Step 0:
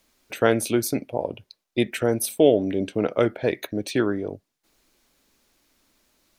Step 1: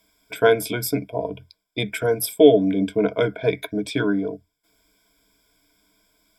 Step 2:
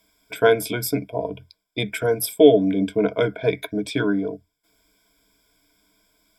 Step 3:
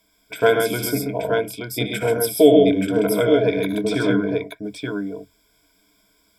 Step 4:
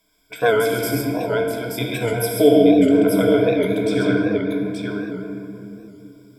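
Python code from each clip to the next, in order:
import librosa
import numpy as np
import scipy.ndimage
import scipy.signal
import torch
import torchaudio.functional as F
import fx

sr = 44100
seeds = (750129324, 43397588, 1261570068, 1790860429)

y1 = fx.ripple_eq(x, sr, per_octave=1.7, db=18)
y1 = y1 * librosa.db_to_amplitude(-2.0)
y2 = y1
y3 = fx.echo_multitap(y2, sr, ms=(60, 74, 103, 133, 161, 878), db=(-15.0, -10.5, -13.0, -4.5, -19.0, -5.0))
y4 = fx.room_shoebox(y3, sr, seeds[0], volume_m3=150.0, walls='hard', distance_m=0.38)
y4 = fx.record_warp(y4, sr, rpm=78.0, depth_cents=100.0)
y4 = y4 * librosa.db_to_amplitude(-2.5)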